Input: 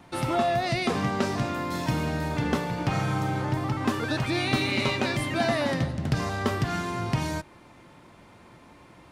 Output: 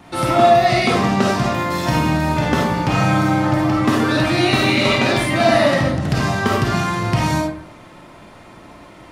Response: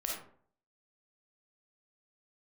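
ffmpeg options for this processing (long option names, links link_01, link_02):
-filter_complex "[1:a]atrim=start_sample=2205[link_01];[0:a][link_01]afir=irnorm=-1:irlink=0,volume=8dB"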